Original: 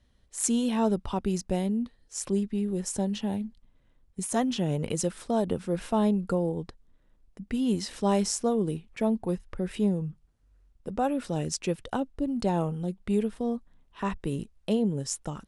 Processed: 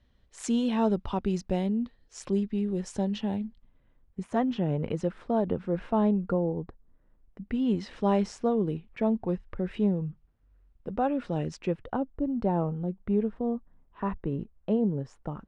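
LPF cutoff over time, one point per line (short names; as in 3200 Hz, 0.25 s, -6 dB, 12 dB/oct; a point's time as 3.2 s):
3.22 s 4200 Hz
4.25 s 2000 Hz
6.24 s 2000 Hz
6.63 s 1200 Hz
7.62 s 2700 Hz
11.51 s 2700 Hz
11.96 s 1400 Hz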